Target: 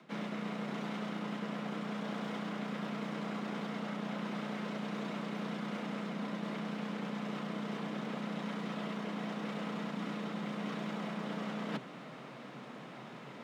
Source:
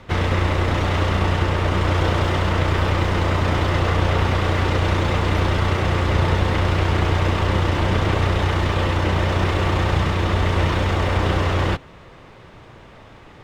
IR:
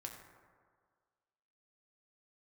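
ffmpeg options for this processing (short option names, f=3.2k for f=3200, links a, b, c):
-af "areverse,acompressor=threshold=-32dB:ratio=8,areverse,afreqshift=120,volume=-4.5dB"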